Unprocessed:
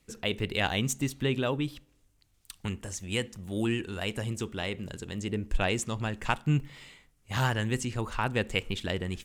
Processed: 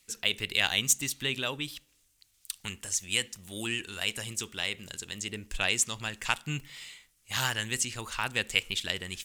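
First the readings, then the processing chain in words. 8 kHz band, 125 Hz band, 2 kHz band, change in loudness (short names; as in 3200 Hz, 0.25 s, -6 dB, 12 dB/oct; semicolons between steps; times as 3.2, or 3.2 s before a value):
+9.0 dB, -10.0 dB, +3.0 dB, +1.0 dB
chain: tilt shelf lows -10 dB, about 1500 Hz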